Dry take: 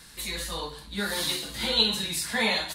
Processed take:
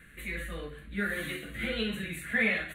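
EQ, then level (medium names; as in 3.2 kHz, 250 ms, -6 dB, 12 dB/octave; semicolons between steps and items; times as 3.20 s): resonant high shelf 2.9 kHz -11 dB, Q 1.5; static phaser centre 2.2 kHz, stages 4; 0.0 dB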